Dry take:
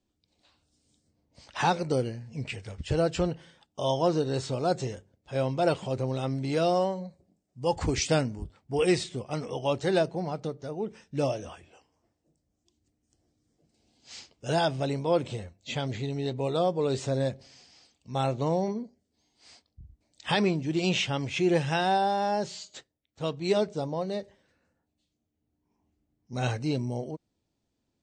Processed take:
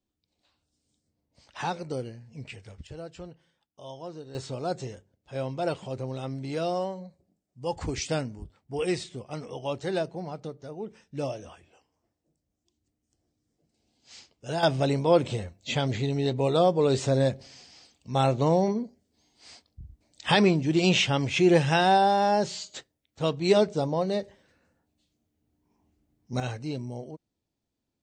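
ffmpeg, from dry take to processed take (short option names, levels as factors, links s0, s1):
-af "asetnsamples=n=441:p=0,asendcmd='2.87 volume volume -15dB;4.35 volume volume -4dB;14.63 volume volume 4.5dB;26.4 volume volume -4.5dB',volume=0.501"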